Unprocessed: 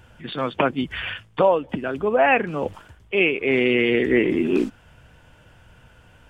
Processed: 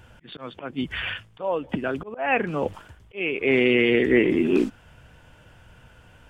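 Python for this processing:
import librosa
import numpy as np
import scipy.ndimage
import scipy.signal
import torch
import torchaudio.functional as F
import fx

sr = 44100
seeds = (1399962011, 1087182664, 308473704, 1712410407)

y = fx.auto_swell(x, sr, attack_ms=292.0)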